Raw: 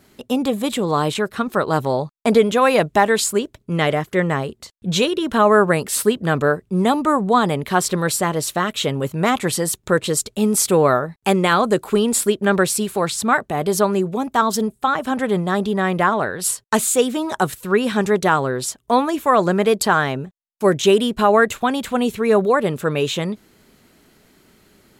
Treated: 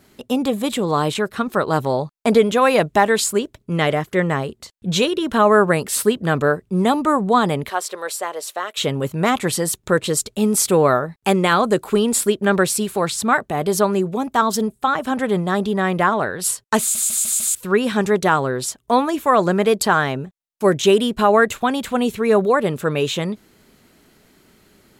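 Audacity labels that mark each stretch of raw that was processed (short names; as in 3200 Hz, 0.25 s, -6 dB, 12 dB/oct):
7.700000	8.770000	ladder high-pass 390 Hz, resonance 25%
16.800000	16.800000	stutter in place 0.15 s, 5 plays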